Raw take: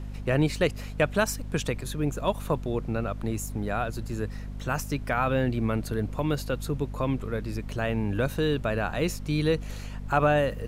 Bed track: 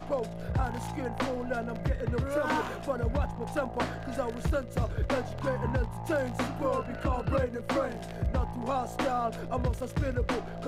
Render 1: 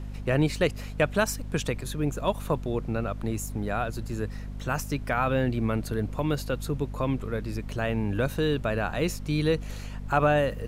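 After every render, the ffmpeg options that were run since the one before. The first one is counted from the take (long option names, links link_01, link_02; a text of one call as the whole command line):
ffmpeg -i in.wav -af anull out.wav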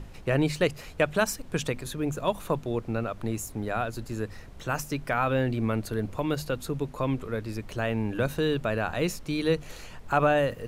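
ffmpeg -i in.wav -af "bandreject=frequency=50:width_type=h:width=6,bandreject=frequency=100:width_type=h:width=6,bandreject=frequency=150:width_type=h:width=6,bandreject=frequency=200:width_type=h:width=6,bandreject=frequency=250:width_type=h:width=6" out.wav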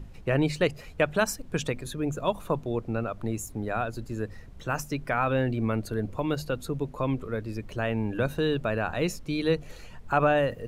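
ffmpeg -i in.wav -af "afftdn=noise_reduction=7:noise_floor=-44" out.wav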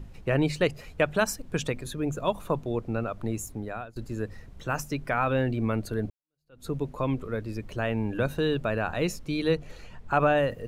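ffmpeg -i in.wav -filter_complex "[0:a]asettb=1/sr,asplit=3[link_01][link_02][link_03];[link_01]atrim=end=9.574[link_04];[link_02]atrim=start=9.57:end=10.13,asetpts=PTS-STARTPTS,afade=type=in:duration=0.004:curve=qsin,afade=type=out:start_time=0.556:duration=0.004:curve=qsin,highshelf=frequency=7700:gain=-9.5[link_05];[link_03]atrim=start=10.126[link_06];[link_04][link_05]acrossfade=duration=0.004:curve1=hsin:curve2=qsin[link_07];[link_07][link_06]acrossfade=duration=0.004:curve1=qsin:curve2=hsin,asplit=3[link_08][link_09][link_10];[link_08]atrim=end=3.96,asetpts=PTS-STARTPTS,afade=type=out:start_time=3.47:duration=0.49:silence=0.1[link_11];[link_09]atrim=start=3.96:end=6.1,asetpts=PTS-STARTPTS,afade=type=in:duration=0.004:curve=hsin:silence=0.1,afade=type=out:start_time=2.136:duration=0.004:curve=hsin[link_12];[link_10]atrim=start=6.1,asetpts=PTS-STARTPTS,afade=type=in:duration=0.57:curve=exp[link_13];[link_11][link_12][link_13]concat=n=3:v=0:a=1" out.wav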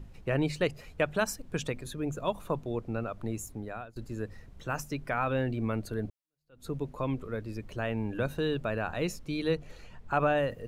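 ffmpeg -i in.wav -af "volume=-4dB" out.wav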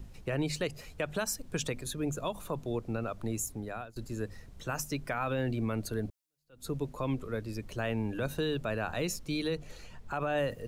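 ffmpeg -i in.wav -filter_complex "[0:a]acrossover=split=330|4000[link_01][link_02][link_03];[link_03]acontrast=80[link_04];[link_01][link_02][link_04]amix=inputs=3:normalize=0,alimiter=limit=-22.5dB:level=0:latency=1:release=79" out.wav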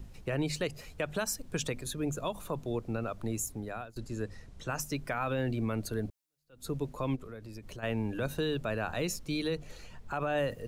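ffmpeg -i in.wav -filter_complex "[0:a]asettb=1/sr,asplit=3[link_01][link_02][link_03];[link_01]atrim=end=3.984[link_04];[link_02]atrim=start=3.98:end=4.8,asetpts=PTS-STARTPTS,afade=type=in:duration=0.004:curve=qsin,afade=type=out:start_time=0.816:duration=0.004:curve=qsin,lowpass=9600[link_05];[link_03]atrim=start=4.796[link_06];[link_04][link_05]acrossfade=duration=0.004:curve1=hsin:curve2=qsin[link_07];[link_07][link_06]acrossfade=duration=0.004:curve1=qsin:curve2=hsin,asplit=3[link_08][link_09][link_10];[link_08]afade=type=out:start_time=7.15:duration=0.02[link_11];[link_09]acompressor=threshold=-41dB:ratio=5:attack=3.2:release=140:knee=1:detection=peak,afade=type=in:start_time=7.15:duration=0.02,afade=type=out:start_time=7.82:duration=0.02[link_12];[link_10]afade=type=in:start_time=7.82:duration=0.02[link_13];[link_11][link_12][link_13]amix=inputs=3:normalize=0" out.wav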